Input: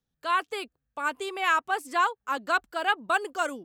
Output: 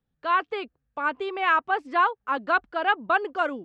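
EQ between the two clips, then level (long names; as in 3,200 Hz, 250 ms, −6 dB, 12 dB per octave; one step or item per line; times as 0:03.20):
low-pass with resonance 6,300 Hz, resonance Q 2.2
high-frequency loss of the air 440 metres
+5.0 dB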